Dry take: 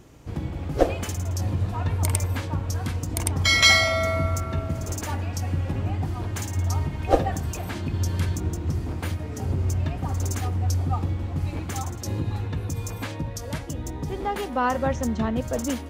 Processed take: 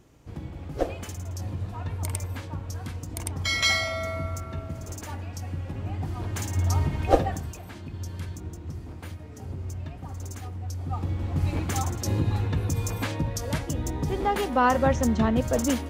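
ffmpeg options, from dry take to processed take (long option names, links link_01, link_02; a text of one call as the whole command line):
ffmpeg -i in.wav -af "volume=14.5dB,afade=type=in:start_time=5.75:duration=1.19:silence=0.354813,afade=type=out:start_time=6.94:duration=0.65:silence=0.251189,afade=type=in:start_time=10.77:duration=0.74:silence=0.237137" out.wav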